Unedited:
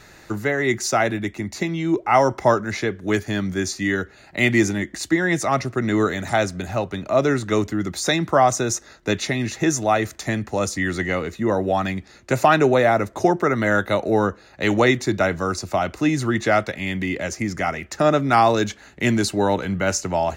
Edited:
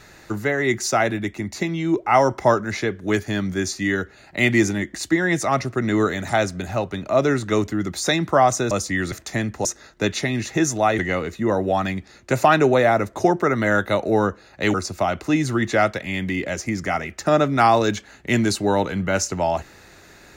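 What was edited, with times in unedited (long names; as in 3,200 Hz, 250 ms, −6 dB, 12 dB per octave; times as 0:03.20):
0:08.71–0:10.05: swap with 0:10.58–0:10.99
0:14.74–0:15.47: remove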